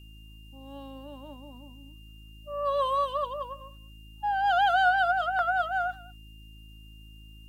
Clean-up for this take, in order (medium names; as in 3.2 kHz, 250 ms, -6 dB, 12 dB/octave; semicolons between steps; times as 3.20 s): de-hum 53.6 Hz, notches 6; band-stop 2.8 kHz, Q 30; expander -41 dBFS, range -21 dB; inverse comb 199 ms -22 dB